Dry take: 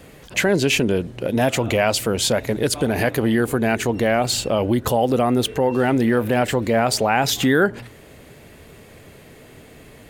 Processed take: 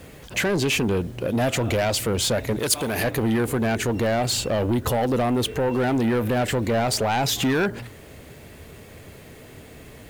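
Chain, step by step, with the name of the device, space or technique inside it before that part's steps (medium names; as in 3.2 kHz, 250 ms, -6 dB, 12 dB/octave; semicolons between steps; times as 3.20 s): open-reel tape (saturation -17.5 dBFS, distortion -11 dB; peaking EQ 78 Hz +4.5 dB 0.99 oct; white noise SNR 36 dB); 2.59–3.04 s: tilt EQ +2 dB/octave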